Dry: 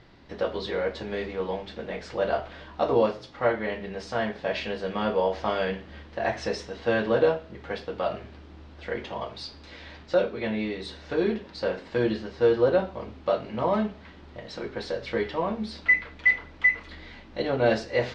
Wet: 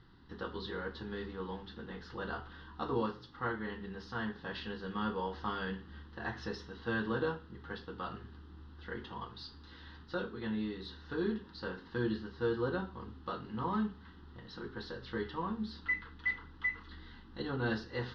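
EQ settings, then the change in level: treble shelf 5.2 kHz -10 dB; static phaser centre 2.3 kHz, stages 6; -4.5 dB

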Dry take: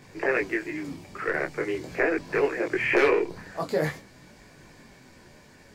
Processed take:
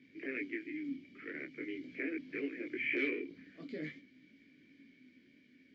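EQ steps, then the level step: vowel filter i; low-pass 6.4 kHz 24 dB/octave; 0.0 dB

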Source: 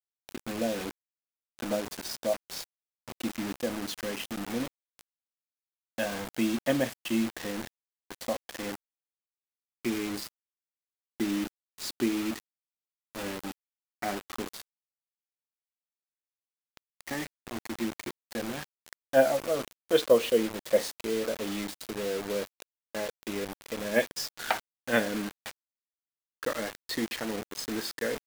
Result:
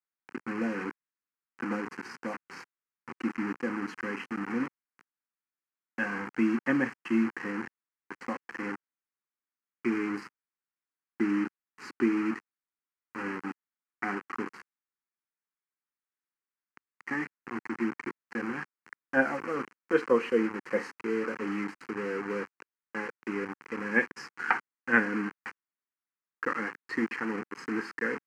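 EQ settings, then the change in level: band-pass 240–2400 Hz; static phaser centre 1.5 kHz, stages 4; +7.0 dB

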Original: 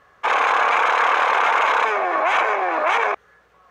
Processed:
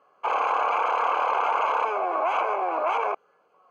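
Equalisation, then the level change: boxcar filter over 24 samples; high-pass 230 Hz 12 dB/octave; tilt EQ +3 dB/octave; 0.0 dB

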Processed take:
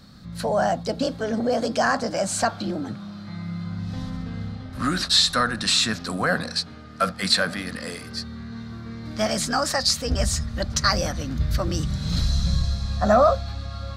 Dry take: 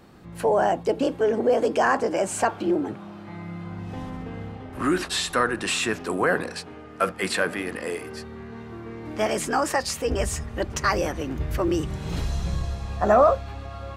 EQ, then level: FFT filter 230 Hz 0 dB, 380 Hz -18 dB, 550 Hz -7 dB, 890 Hz -13 dB, 1.3 kHz -3 dB, 2.8 kHz -8 dB, 4.1 kHz +9 dB, 7.1 kHz -1 dB, 11 kHz -4 dB; dynamic bell 720 Hz, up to +6 dB, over -46 dBFS, Q 2.7; +5.0 dB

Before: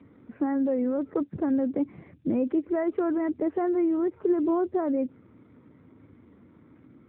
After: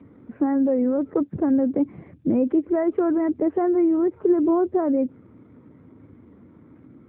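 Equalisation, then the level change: treble shelf 2.1 kHz -10.5 dB; +5.5 dB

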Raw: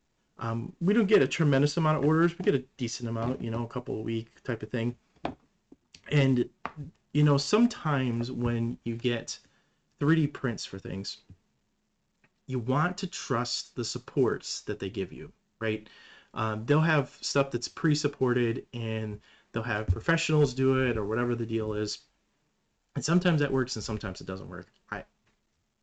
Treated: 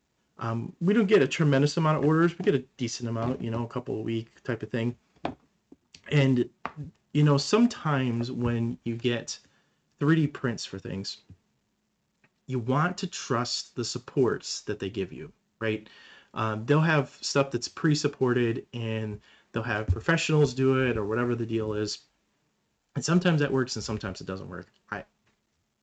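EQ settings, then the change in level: high-pass 53 Hz; +1.5 dB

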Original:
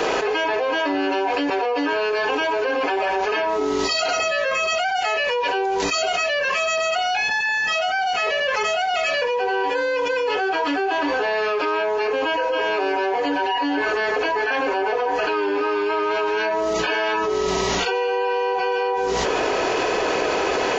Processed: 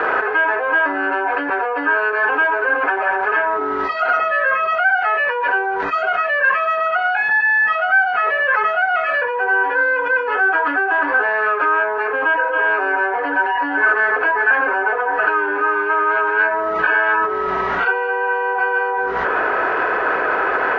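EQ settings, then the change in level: resonant low-pass 1.5 kHz, resonance Q 4.3; distance through air 63 m; bass shelf 480 Hz -7.5 dB; +1.5 dB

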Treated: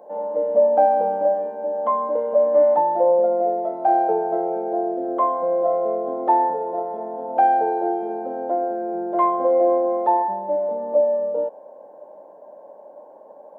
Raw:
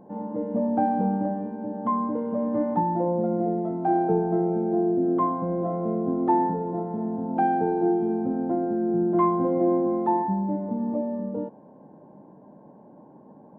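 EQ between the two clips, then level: resonant high-pass 570 Hz, resonance Q 4.9; treble shelf 2.1 kHz +8 dB; 0.0 dB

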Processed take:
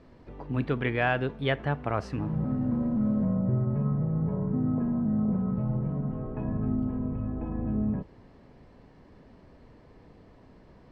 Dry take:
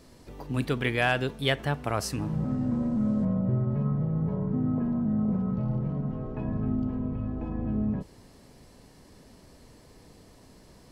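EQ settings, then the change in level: low-pass 2.2 kHz 12 dB/octave; 0.0 dB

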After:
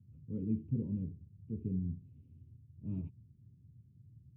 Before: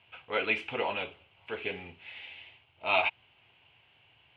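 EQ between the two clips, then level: high-pass 84 Hz; inverse Chebyshev low-pass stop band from 670 Hz, stop band 60 dB; distance through air 380 m; +17.5 dB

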